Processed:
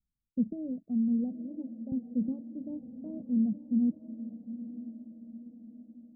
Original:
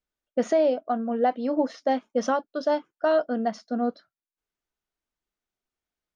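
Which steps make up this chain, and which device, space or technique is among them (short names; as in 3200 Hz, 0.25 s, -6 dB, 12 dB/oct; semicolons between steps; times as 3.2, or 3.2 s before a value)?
1.33–1.92 Bessel high-pass 510 Hz, order 2; the neighbour's flat through the wall (LPF 260 Hz 24 dB/oct; bell 86 Hz +5 dB); resonant low shelf 240 Hz +6 dB, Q 1.5; diffused feedback echo 0.918 s, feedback 50%, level -12 dB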